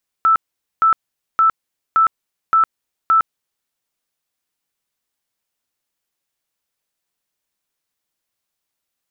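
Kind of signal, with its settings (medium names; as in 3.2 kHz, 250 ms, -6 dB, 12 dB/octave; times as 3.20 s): tone bursts 1.32 kHz, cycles 143, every 0.57 s, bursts 6, -9.5 dBFS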